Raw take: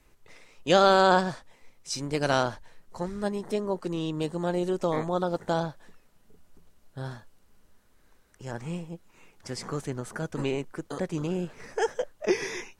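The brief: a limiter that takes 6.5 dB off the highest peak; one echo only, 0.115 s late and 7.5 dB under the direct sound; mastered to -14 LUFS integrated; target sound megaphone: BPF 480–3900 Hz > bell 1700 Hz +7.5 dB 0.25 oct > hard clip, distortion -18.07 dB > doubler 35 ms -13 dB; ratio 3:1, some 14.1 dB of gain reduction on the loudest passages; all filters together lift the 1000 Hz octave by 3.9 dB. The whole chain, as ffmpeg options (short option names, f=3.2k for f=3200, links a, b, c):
-filter_complex "[0:a]equalizer=f=1k:t=o:g=5.5,acompressor=threshold=-32dB:ratio=3,alimiter=level_in=1dB:limit=-24dB:level=0:latency=1,volume=-1dB,highpass=480,lowpass=3.9k,equalizer=f=1.7k:t=o:w=0.25:g=7.5,aecho=1:1:115:0.422,asoftclip=type=hard:threshold=-30dB,asplit=2[a][b];[b]adelay=35,volume=-13dB[c];[a][c]amix=inputs=2:normalize=0,volume=26.5dB"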